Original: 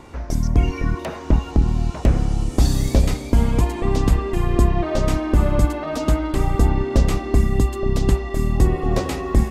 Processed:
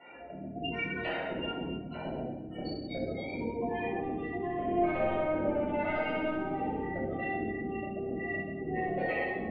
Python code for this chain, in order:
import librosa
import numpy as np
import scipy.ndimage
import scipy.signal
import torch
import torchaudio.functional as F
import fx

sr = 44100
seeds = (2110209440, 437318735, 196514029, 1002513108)

y = fx.spec_gate(x, sr, threshold_db=-20, keep='strong')
y = scipy.signal.sosfilt(scipy.signal.butter(2, 1100.0, 'highpass', fs=sr, output='sos'), y)
y = fx.high_shelf(y, sr, hz=3900.0, db=-10.0)
y = 10.0 ** (-26.0 / 20.0) * np.tanh(y / 10.0 ** (-26.0 / 20.0))
y = fx.air_absorb(y, sr, metres=180.0)
y = fx.fixed_phaser(y, sr, hz=2700.0, stages=4)
y = fx.room_flutter(y, sr, wall_m=10.8, rt60_s=1.1, at=(4.43, 6.82), fade=0.02)
y = fx.room_shoebox(y, sr, seeds[0], volume_m3=690.0, walls='mixed', distance_m=6.8)